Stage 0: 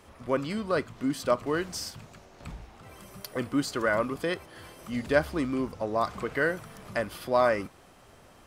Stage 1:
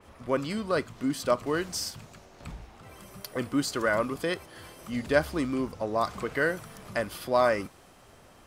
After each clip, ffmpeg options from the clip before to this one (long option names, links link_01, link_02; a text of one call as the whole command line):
ffmpeg -i in.wav -af "adynamicequalizer=threshold=0.00891:dfrequency=3700:dqfactor=0.7:tfrequency=3700:tqfactor=0.7:attack=5:release=100:ratio=0.375:range=2:mode=boostabove:tftype=highshelf" out.wav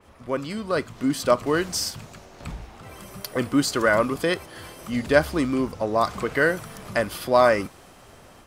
ffmpeg -i in.wav -af "dynaudnorm=framelen=560:gausssize=3:maxgain=6.5dB" out.wav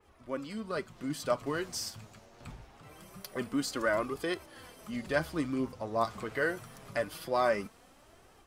ffmpeg -i in.wav -af "flanger=delay=2.3:depth=7.2:regen=37:speed=0.24:shape=triangular,volume=-6.5dB" out.wav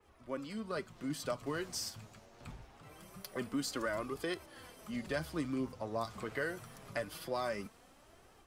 ffmpeg -i in.wav -filter_complex "[0:a]acrossover=split=190|3000[link_01][link_02][link_03];[link_02]acompressor=threshold=-31dB:ratio=6[link_04];[link_01][link_04][link_03]amix=inputs=3:normalize=0,volume=-2.5dB" out.wav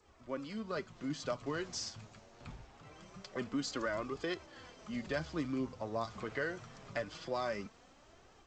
ffmpeg -i in.wav -ar 16000 -c:a g722 out.g722